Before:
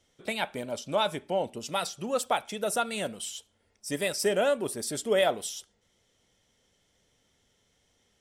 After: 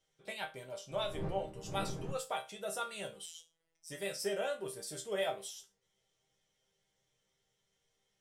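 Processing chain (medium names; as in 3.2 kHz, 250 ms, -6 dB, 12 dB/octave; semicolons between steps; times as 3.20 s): 0.90–2.11 s: wind noise 270 Hz -29 dBFS; peaking EQ 250 Hz -11 dB 0.34 oct; chord resonator C3 minor, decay 0.25 s; 3.26–3.90 s: robot voice 164 Hz; trim +3.5 dB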